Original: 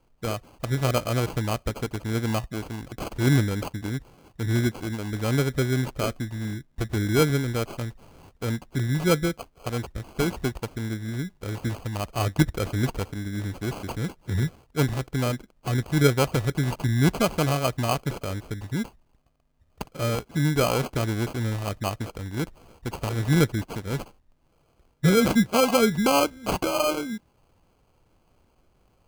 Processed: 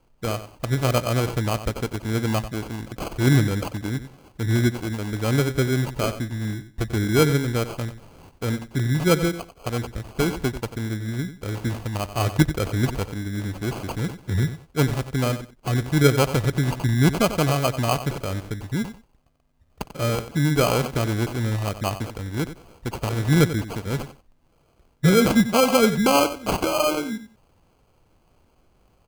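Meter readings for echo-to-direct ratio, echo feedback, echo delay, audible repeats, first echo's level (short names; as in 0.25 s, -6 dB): -12.5 dB, 18%, 92 ms, 2, -12.5 dB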